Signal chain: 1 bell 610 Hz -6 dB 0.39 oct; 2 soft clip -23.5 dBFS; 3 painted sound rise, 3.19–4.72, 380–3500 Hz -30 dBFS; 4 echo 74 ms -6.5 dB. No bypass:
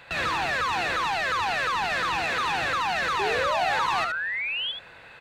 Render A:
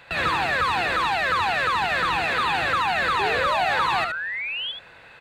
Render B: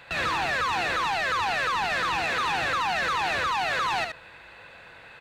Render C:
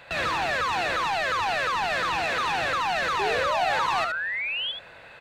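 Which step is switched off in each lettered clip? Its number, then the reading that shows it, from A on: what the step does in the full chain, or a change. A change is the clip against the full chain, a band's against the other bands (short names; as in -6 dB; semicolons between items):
2, distortion -14 dB; 3, 500 Hz band -2.5 dB; 1, 500 Hz band +2.0 dB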